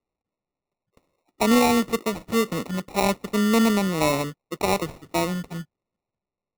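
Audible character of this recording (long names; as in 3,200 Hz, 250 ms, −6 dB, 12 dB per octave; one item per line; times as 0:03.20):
aliases and images of a low sample rate 1,600 Hz, jitter 0%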